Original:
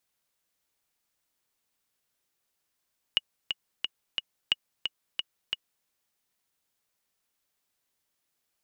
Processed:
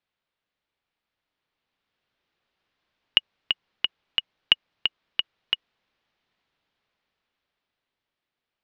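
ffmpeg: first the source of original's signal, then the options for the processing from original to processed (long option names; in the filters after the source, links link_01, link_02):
-f lavfi -i "aevalsrc='pow(10,(-9.5-6*gte(mod(t,4*60/178),60/178))/20)*sin(2*PI*2890*mod(t,60/178))*exp(-6.91*mod(t,60/178)/0.03)':duration=2.69:sample_rate=44100"
-af "lowpass=frequency=3900:width=0.5412,lowpass=frequency=3900:width=1.3066,dynaudnorm=framelen=360:gausssize=11:maxgain=11.5dB"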